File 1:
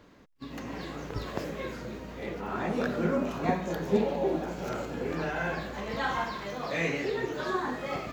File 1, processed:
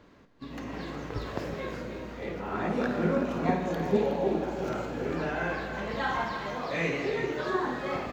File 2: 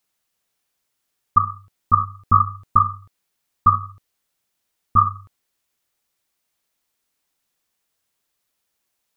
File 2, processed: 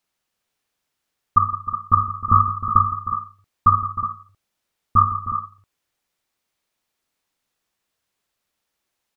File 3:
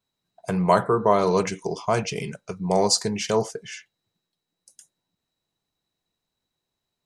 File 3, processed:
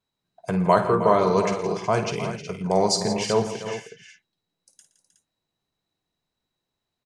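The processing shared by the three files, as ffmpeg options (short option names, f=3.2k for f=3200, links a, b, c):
-af "highshelf=f=6.6k:g=-8,aecho=1:1:53|119|166|311|367:0.282|0.15|0.224|0.237|0.282"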